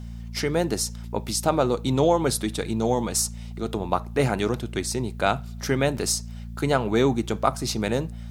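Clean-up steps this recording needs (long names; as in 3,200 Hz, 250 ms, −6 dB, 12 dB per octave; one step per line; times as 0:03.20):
hum removal 57.5 Hz, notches 4
repair the gap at 0:03.97/0:05.97, 1.7 ms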